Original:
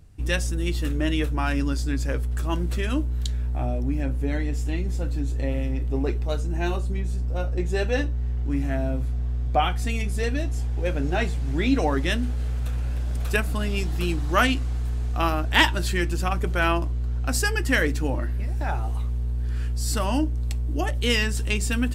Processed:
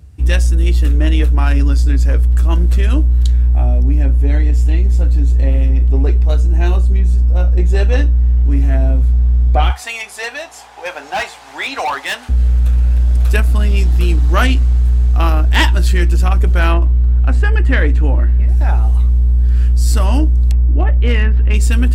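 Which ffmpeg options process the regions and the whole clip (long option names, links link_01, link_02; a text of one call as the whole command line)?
ffmpeg -i in.wav -filter_complex "[0:a]asettb=1/sr,asplit=3[link_01][link_02][link_03];[link_01]atrim=end=9.704[link_04];[link_02]atrim=start=9.7:end=12.29,asetpts=PTS-STARTPTS,afade=type=in:duration=0.004:curve=qsin,afade=type=out:start_time=2.586:duration=0.004:curve=qsin,highpass=frequency=850:width_type=q:width=2.9,equalizer=frequency=3100:width_type=o:width=2.5:gain=3.5,asoftclip=type=hard:threshold=-21dB[link_05];[link_03]atrim=start=12.286[link_06];[link_04][link_05]acrossfade=duration=0.004:curve1=hsin:curve2=qsin[link_07];[link_07][link_06]acrossfade=duration=0.004:curve1=qsin:curve2=hsin,asettb=1/sr,asplit=3[link_08][link_09][link_10];[link_08]atrim=end=16.744[link_11];[link_09]atrim=start=16.74:end=18.49,asetpts=PTS-STARTPTS,afade=type=in:duration=0.004:curve=qsin,afade=type=out:start_time=1.746:duration=0.004:curve=qsin,acrossover=split=3200[link_12][link_13];[link_13]acompressor=threshold=-43dB:ratio=4:attack=1:release=60[link_14];[link_12][link_14]amix=inputs=2:normalize=0,lowpass=7300,equalizer=frequency=5300:width_type=o:width=0.61:gain=-10[link_15];[link_10]atrim=start=18.486[link_16];[link_11][link_15]acrossfade=duration=0.004:curve1=hsin:curve2=qsin[link_17];[link_17][link_16]acrossfade=duration=0.004:curve1=qsin:curve2=hsin,asettb=1/sr,asplit=3[link_18][link_19][link_20];[link_18]atrim=end=20.514[link_21];[link_19]atrim=start=20.51:end=21.54,asetpts=PTS-STARTPTS,afade=type=in:duration=0.004:curve=qsin,afade=type=out:start_time=1.026:duration=0.004:curve=qsin,lowpass=frequency=2400:width=0.5412,lowpass=frequency=2400:width=1.3066,asoftclip=type=hard:threshold=-15.5dB[link_22];[link_20]atrim=start=21.536[link_23];[link_21][link_22]acrossfade=duration=0.004:curve1=hsin:curve2=qsin[link_24];[link_24][link_23]acrossfade=duration=0.004:curve1=qsin:curve2=hsin,highpass=frequency=48:width=0.5412,highpass=frequency=48:width=1.3066,equalizer=frequency=65:width=2.1:gain=12.5,acontrast=82,volume=-1dB" out.wav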